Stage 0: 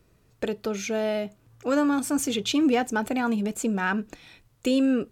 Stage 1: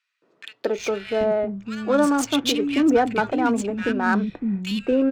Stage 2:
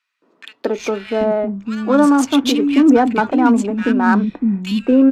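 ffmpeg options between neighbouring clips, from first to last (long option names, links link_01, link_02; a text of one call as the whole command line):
ffmpeg -i in.wav -filter_complex "[0:a]acrossover=split=250|1900[link_01][link_02][link_03];[link_02]adelay=220[link_04];[link_01]adelay=780[link_05];[link_05][link_04][link_03]amix=inputs=3:normalize=0,adynamicsmooth=sensitivity=5:basefreq=2500,volume=6.5dB" out.wav
ffmpeg -i in.wav -af "equalizer=frequency=100:width_type=o:width=0.67:gain=-10,equalizer=frequency=250:width_type=o:width=0.67:gain=9,equalizer=frequency=1000:width_type=o:width=0.67:gain=6,volume=2dB" -ar 32000 -c:a aac -b:a 96k out.aac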